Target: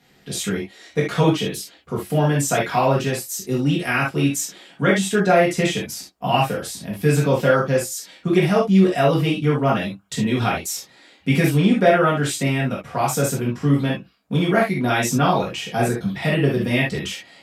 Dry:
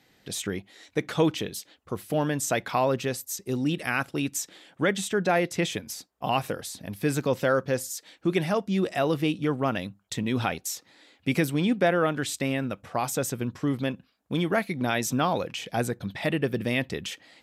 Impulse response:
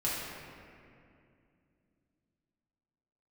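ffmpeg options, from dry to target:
-filter_complex "[1:a]atrim=start_sample=2205,atrim=end_sample=3969,asetrate=48510,aresample=44100[link_01];[0:a][link_01]afir=irnorm=-1:irlink=0,volume=3dB"

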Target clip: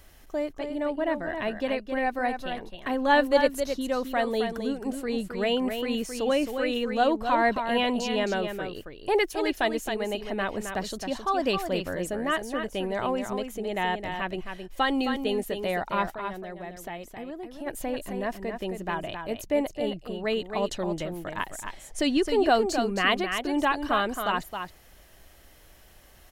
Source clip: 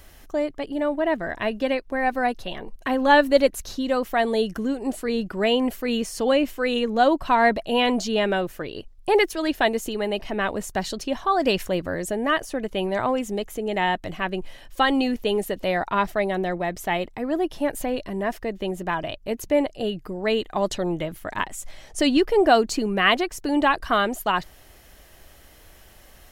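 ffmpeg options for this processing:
ffmpeg -i in.wav -filter_complex "[0:a]asplit=3[link_01][link_02][link_03];[link_01]afade=type=out:start_time=16.1:duration=0.02[link_04];[link_02]acompressor=threshold=-31dB:ratio=6,afade=type=in:start_time=16.1:duration=0.02,afade=type=out:start_time=17.66:duration=0.02[link_05];[link_03]afade=type=in:start_time=17.66:duration=0.02[link_06];[link_04][link_05][link_06]amix=inputs=3:normalize=0,asplit=2[link_07][link_08];[link_08]aecho=0:1:266:0.447[link_09];[link_07][link_09]amix=inputs=2:normalize=0,volume=-5dB" out.wav

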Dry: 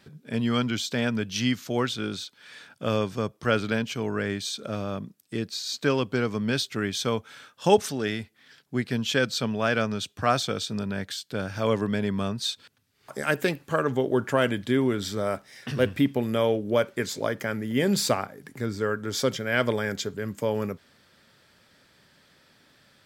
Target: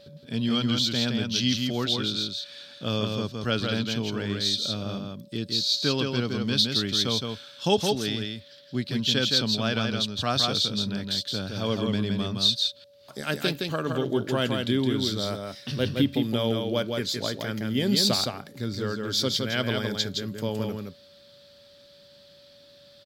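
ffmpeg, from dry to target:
ffmpeg -i in.wav -af "aeval=exprs='val(0)+0.00631*sin(2*PI*570*n/s)':channel_layout=same,equalizer=frequency=500:width_type=o:width=1:gain=-5,equalizer=frequency=1000:width_type=o:width=1:gain=-4,equalizer=frequency=2000:width_type=o:width=1:gain=-8,equalizer=frequency=4000:width_type=o:width=1:gain=12,equalizer=frequency=8000:width_type=o:width=1:gain=-6,aecho=1:1:166:0.631" out.wav

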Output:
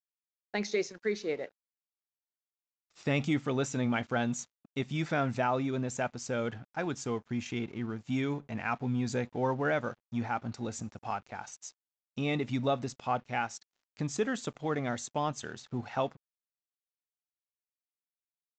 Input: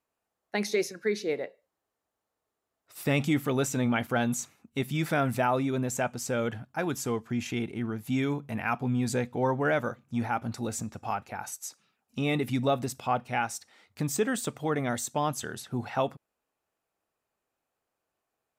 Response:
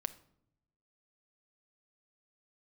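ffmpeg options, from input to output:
-af "aeval=exprs='sgn(val(0))*max(abs(val(0))-0.00251,0)':channel_layout=same,aresample=16000,aresample=44100,volume=-3dB"

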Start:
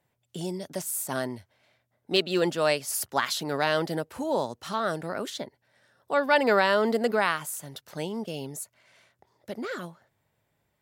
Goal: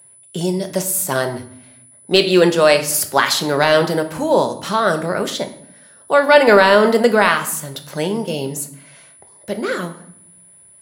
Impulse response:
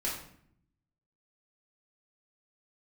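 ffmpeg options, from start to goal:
-filter_complex "[0:a]asplit=2[link_01][link_02];[1:a]atrim=start_sample=2205[link_03];[link_02][link_03]afir=irnorm=-1:irlink=0,volume=-9dB[link_04];[link_01][link_04]amix=inputs=2:normalize=0,apsyclip=11dB,aeval=exprs='val(0)+0.00708*sin(2*PI*10000*n/s)':channel_layout=same,volume=-1.5dB"

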